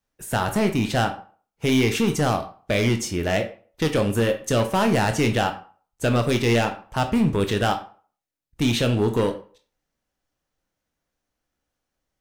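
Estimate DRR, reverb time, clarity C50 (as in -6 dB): 6.0 dB, 0.45 s, 11.5 dB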